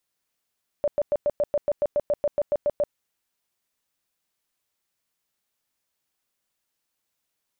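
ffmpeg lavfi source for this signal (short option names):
-f lavfi -i "aevalsrc='0.119*sin(2*PI*586*mod(t,0.14))*lt(mod(t,0.14),22/586)':d=2.1:s=44100"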